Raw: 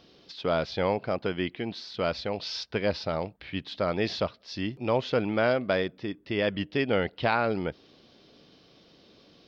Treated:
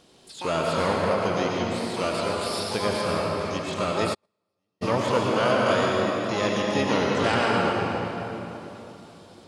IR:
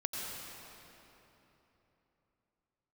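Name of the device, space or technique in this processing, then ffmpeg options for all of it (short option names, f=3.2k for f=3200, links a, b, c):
shimmer-style reverb: -filter_complex "[0:a]asplit=2[a][b];[b]asetrate=88200,aresample=44100,atempo=0.5,volume=-5dB[c];[a][c]amix=inputs=2:normalize=0[d];[1:a]atrim=start_sample=2205[e];[d][e]afir=irnorm=-1:irlink=0,asplit=3[f][g][h];[f]afade=t=out:st=4.13:d=0.02[i];[g]agate=range=-52dB:threshold=-17dB:ratio=16:detection=peak,afade=t=in:st=4.13:d=0.02,afade=t=out:st=4.81:d=0.02[j];[h]afade=t=in:st=4.81:d=0.02[k];[i][j][k]amix=inputs=3:normalize=0"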